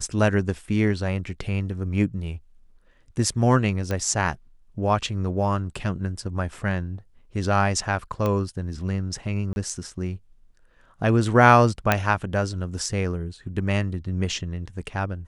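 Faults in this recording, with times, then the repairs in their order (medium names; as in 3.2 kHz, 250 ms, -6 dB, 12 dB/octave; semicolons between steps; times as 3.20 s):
3.91 s: pop -14 dBFS
8.26 s: pop -13 dBFS
9.53–9.56 s: dropout 31 ms
11.92 s: pop -4 dBFS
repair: de-click; interpolate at 9.53 s, 31 ms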